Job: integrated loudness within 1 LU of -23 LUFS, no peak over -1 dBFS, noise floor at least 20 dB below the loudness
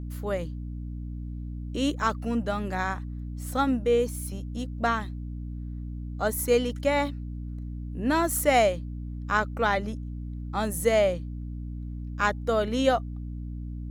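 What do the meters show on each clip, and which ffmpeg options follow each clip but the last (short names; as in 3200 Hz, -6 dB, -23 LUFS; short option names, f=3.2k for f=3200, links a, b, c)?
hum 60 Hz; harmonics up to 300 Hz; hum level -32 dBFS; loudness -28.5 LUFS; peak -9.0 dBFS; loudness target -23.0 LUFS
-> -af "bandreject=f=60:t=h:w=6,bandreject=f=120:t=h:w=6,bandreject=f=180:t=h:w=6,bandreject=f=240:t=h:w=6,bandreject=f=300:t=h:w=6"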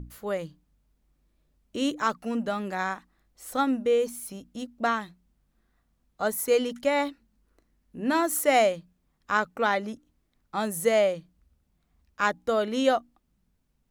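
hum none; loudness -27.0 LUFS; peak -9.5 dBFS; loudness target -23.0 LUFS
-> -af "volume=4dB"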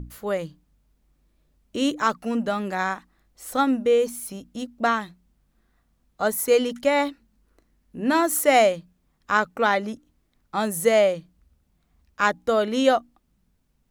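loudness -23.0 LUFS; peak -5.5 dBFS; noise floor -68 dBFS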